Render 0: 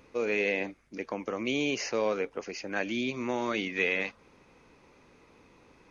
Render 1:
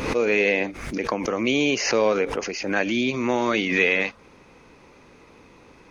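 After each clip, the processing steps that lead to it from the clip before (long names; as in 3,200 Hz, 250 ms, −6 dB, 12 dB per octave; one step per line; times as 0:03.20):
background raised ahead of every attack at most 58 dB per second
level +8 dB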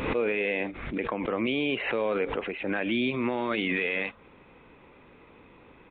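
downsampling to 8,000 Hz
brickwall limiter −15 dBFS, peak gain reduction 8 dB
level −3 dB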